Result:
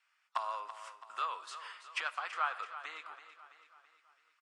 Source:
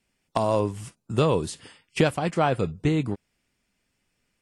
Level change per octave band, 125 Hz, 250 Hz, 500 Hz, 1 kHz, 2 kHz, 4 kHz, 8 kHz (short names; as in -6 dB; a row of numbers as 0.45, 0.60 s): under -40 dB, under -40 dB, -27.0 dB, -8.0 dB, -5.5 dB, -9.5 dB, -15.0 dB